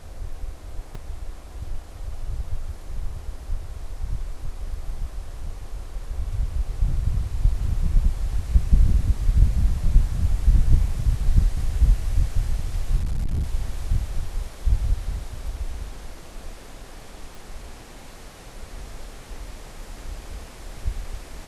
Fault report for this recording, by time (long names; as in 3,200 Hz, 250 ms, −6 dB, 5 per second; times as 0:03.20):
0:00.95: drop-out 3.7 ms
0:12.99–0:13.43: clipping −20.5 dBFS
0:17.35: click